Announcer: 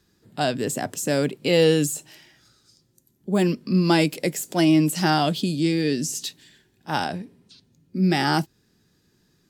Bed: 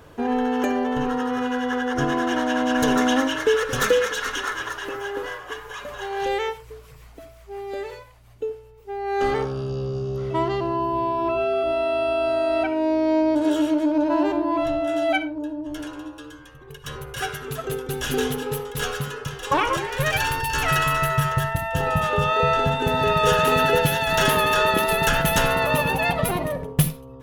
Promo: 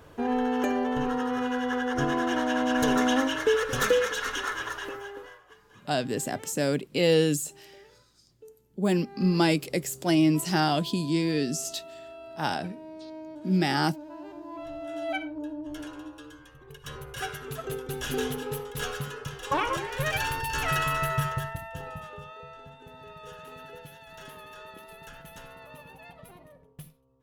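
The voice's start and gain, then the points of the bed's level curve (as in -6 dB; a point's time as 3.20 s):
5.50 s, -4.0 dB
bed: 4.82 s -4 dB
5.56 s -22 dB
14.20 s -22 dB
15.39 s -6 dB
21.22 s -6 dB
22.48 s -26.5 dB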